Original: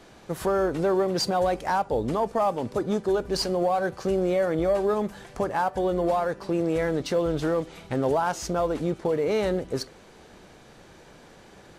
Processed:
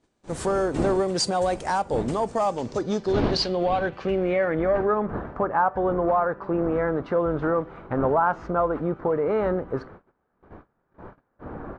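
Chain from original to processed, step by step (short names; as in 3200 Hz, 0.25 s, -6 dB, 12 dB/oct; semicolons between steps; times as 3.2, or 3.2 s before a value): wind noise 400 Hz -37 dBFS; gate -43 dBFS, range -26 dB; low-pass sweep 8700 Hz -> 1300 Hz, 2.24–5.11; downsampling 22050 Hz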